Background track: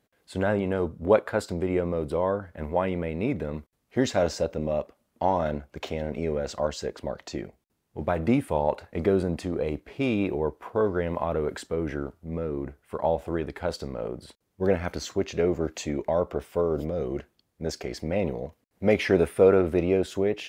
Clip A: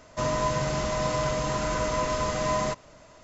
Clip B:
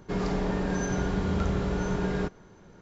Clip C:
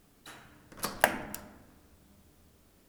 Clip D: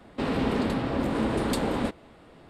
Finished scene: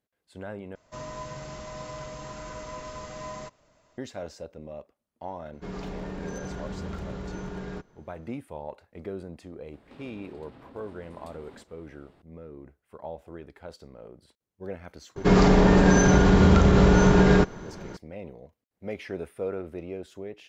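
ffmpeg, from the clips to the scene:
ffmpeg -i bed.wav -i cue0.wav -i cue1.wav -i cue2.wav -i cue3.wav -filter_complex "[2:a]asplit=2[link_01][link_02];[0:a]volume=-13.5dB[link_03];[link_01]aeval=exprs='0.0944*(abs(mod(val(0)/0.0944+3,4)-2)-1)':channel_layout=same[link_04];[4:a]acompressor=threshold=-39dB:ratio=6:attack=3.2:release=140:knee=1:detection=peak[link_05];[link_02]alimiter=level_in=19dB:limit=-1dB:release=50:level=0:latency=1[link_06];[link_03]asplit=2[link_07][link_08];[link_07]atrim=end=0.754[link_09];[1:a]atrim=end=3.23,asetpts=PTS-STARTPTS,volume=-12dB[link_10];[link_08]atrim=start=3.976[link_11];[link_04]atrim=end=2.81,asetpts=PTS-STARTPTS,volume=-8dB,afade=type=in:duration=0.004:curve=hsin,afade=type=out:start_time=2.806:duration=0.004:curve=hsin,adelay=243873S[link_12];[link_05]atrim=end=2.49,asetpts=PTS-STARTPTS,volume=-9dB,afade=type=in:duration=0.004:curve=hsin,afade=type=out:start_time=2.486:duration=0.004:curve=hsin,adelay=9730[link_13];[link_06]atrim=end=2.81,asetpts=PTS-STARTPTS,volume=-7dB,afade=type=in:duration=0.004:curve=hsin,afade=type=out:start_time=2.806:duration=0.004:curve=hsin,adelay=15160[link_14];[link_09][link_10]acrossfade=duration=0.004:curve1=hsin:curve2=hsin[link_15];[link_15][link_11]acrossfade=duration=0.004:curve1=hsin:curve2=hsin[link_16];[link_16][link_12][link_13][link_14]amix=inputs=4:normalize=0" out.wav

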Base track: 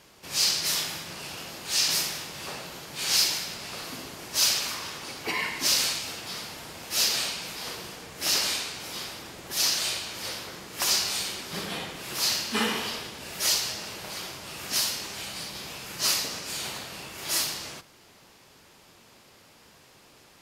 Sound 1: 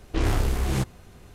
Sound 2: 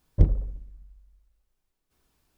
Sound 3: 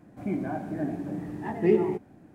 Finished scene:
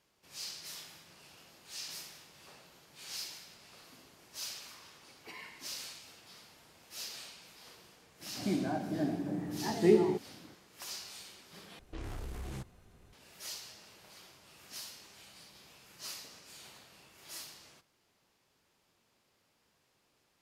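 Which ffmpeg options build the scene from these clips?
ffmpeg -i bed.wav -i cue0.wav -i cue1.wav -i cue2.wav -filter_complex "[0:a]volume=-19dB[link_01];[3:a]highpass=100[link_02];[1:a]acompressor=threshold=-25dB:ratio=10:attack=1.5:release=51:knee=6:detection=peak[link_03];[link_01]asplit=2[link_04][link_05];[link_04]atrim=end=11.794[link_06];[link_03]atrim=end=1.34,asetpts=PTS-STARTPTS,volume=-12dB[link_07];[link_05]atrim=start=13.126[link_08];[link_02]atrim=end=2.34,asetpts=PTS-STARTPTS,volume=-2.5dB,afade=type=in:duration=0.004:curve=hsin,afade=type=out:start_time=2.336:duration=0.004:curve=hsin,adelay=8200[link_09];[link_06][link_07]acrossfade=duration=0.004:curve1=hsin:curve2=hsin[link_10];[link_10][link_08]acrossfade=duration=0.004:curve1=hsin:curve2=hsin[link_11];[link_11][link_09]amix=inputs=2:normalize=0" out.wav

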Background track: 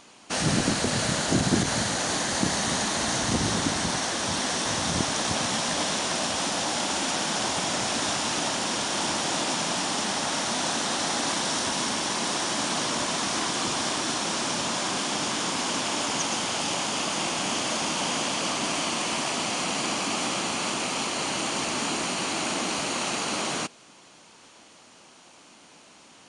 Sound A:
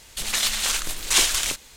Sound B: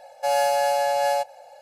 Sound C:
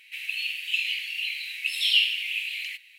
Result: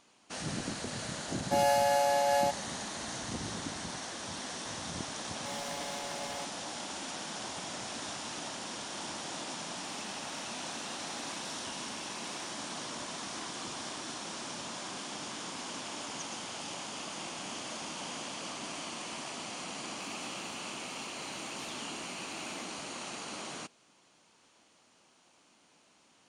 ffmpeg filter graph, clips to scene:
ffmpeg -i bed.wav -i cue0.wav -i cue1.wav -i cue2.wav -filter_complex "[2:a]asplit=2[link_01][link_02];[3:a]asplit=2[link_03][link_04];[0:a]volume=-13dB[link_05];[link_02]asoftclip=type=hard:threshold=-29.5dB[link_06];[link_03]acompressor=threshold=-34dB:ratio=6:attack=3.2:release=140:knee=1:detection=peak[link_07];[link_04]acompressor=threshold=-30dB:ratio=6:attack=3.2:release=140:knee=1:detection=peak[link_08];[link_01]atrim=end=1.61,asetpts=PTS-STARTPTS,volume=-5.5dB,afade=type=in:duration=0.004:curve=hsin,afade=type=out:start_time=1.606:duration=0.004:curve=hsin,adelay=1280[link_09];[link_06]atrim=end=1.61,asetpts=PTS-STARTPTS,volume=-12.5dB,afade=type=in:duration=0.004:curve=hsin,afade=type=out:start_time=1.606:duration=0.004:curve=hsin,adelay=5220[link_10];[link_07]atrim=end=2.98,asetpts=PTS-STARTPTS,volume=-15dB,afade=type=in:duration=0.004:curve=hsin,afade=type=out:start_time=2.976:duration=0.004:curve=hsin,adelay=9720[link_11];[link_08]atrim=end=2.98,asetpts=PTS-STARTPTS,volume=-15.5dB,afade=type=in:duration=0.004:curve=hsin,afade=type=out:start_time=2.976:duration=0.004:curve=hsin,adelay=19870[link_12];[link_05][link_09][link_10][link_11][link_12]amix=inputs=5:normalize=0" out.wav

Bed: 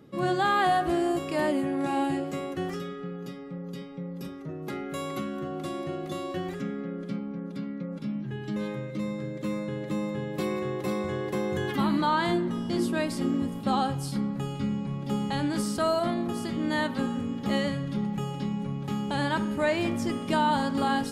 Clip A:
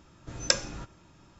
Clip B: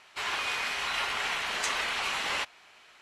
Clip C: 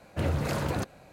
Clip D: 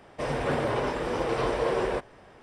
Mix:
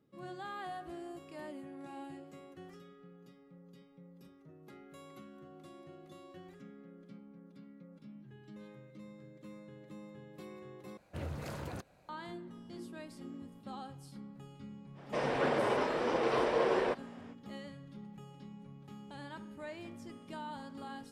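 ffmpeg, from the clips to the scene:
ffmpeg -i bed.wav -i cue0.wav -i cue1.wav -i cue2.wav -i cue3.wav -filter_complex "[0:a]volume=-19.5dB[link_01];[4:a]acrossover=split=160 7400:gain=0.158 1 0.178[link_02][link_03][link_04];[link_02][link_03][link_04]amix=inputs=3:normalize=0[link_05];[link_01]asplit=2[link_06][link_07];[link_06]atrim=end=10.974[link_08];[3:a]atrim=end=1.12,asetpts=PTS-STARTPTS,volume=-12.5dB[link_09];[link_07]atrim=start=12.086[link_10];[link_05]atrim=end=2.42,asetpts=PTS-STARTPTS,volume=-3dB,afade=type=in:duration=0.05,afade=type=out:start_time=2.37:duration=0.05,adelay=14940[link_11];[link_08][link_09]acrossfade=duration=0.004:curve1=hsin:curve2=hsin[link_12];[link_12][link_10]acrossfade=duration=0.004:curve1=hsin:curve2=hsin[link_13];[link_13][link_11]amix=inputs=2:normalize=0" out.wav

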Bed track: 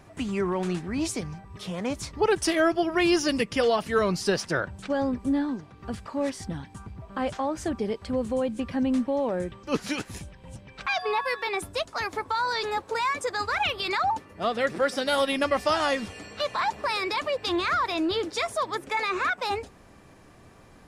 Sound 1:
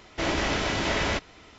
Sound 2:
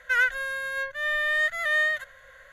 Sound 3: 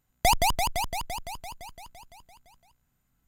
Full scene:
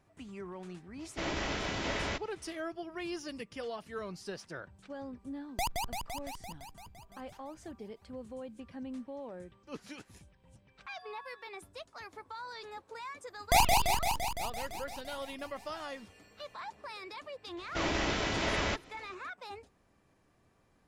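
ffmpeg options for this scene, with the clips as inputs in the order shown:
ffmpeg -i bed.wav -i cue0.wav -i cue1.wav -i cue2.wav -filter_complex "[1:a]asplit=2[link_01][link_02];[3:a]asplit=2[link_03][link_04];[0:a]volume=-17dB[link_05];[link_04]aecho=1:1:28|44:0.562|0.668[link_06];[link_01]atrim=end=1.58,asetpts=PTS-STARTPTS,volume=-8.5dB,afade=type=in:duration=0.004:curve=hsin,afade=type=out:start_time=1.576:duration=0.004:curve=hsin,adelay=990[link_07];[link_03]atrim=end=3.27,asetpts=PTS-STARTPTS,volume=-12dB,afade=type=in:duration=0.004:curve=hsin,afade=type=out:start_time=3.266:duration=0.004:curve=hsin,adelay=5340[link_08];[link_06]atrim=end=3.27,asetpts=PTS-STARTPTS,volume=-4.5dB,afade=type=in:duration=0.004:curve=hsin,afade=type=out:start_time=3.266:duration=0.004:curve=hsin,adelay=13270[link_09];[link_02]atrim=end=1.58,asetpts=PTS-STARTPTS,volume=-5.5dB,afade=type=in:duration=0.004:curve=hsin,afade=type=out:start_time=1.576:duration=0.004:curve=hsin,adelay=17570[link_10];[link_05][link_07][link_08][link_09][link_10]amix=inputs=5:normalize=0" out.wav

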